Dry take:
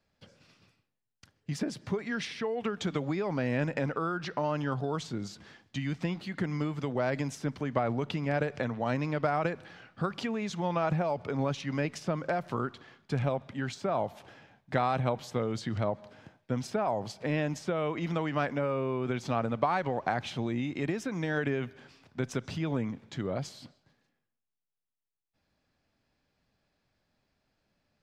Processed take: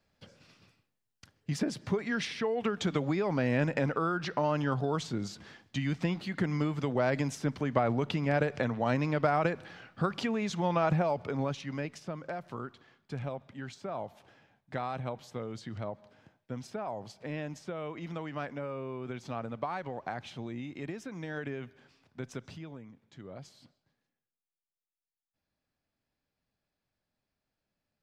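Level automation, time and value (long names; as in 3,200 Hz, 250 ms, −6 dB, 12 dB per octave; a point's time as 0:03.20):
0:11.01 +1.5 dB
0:12.09 −7.5 dB
0:22.47 −7.5 dB
0:22.81 −17 dB
0:23.61 −10 dB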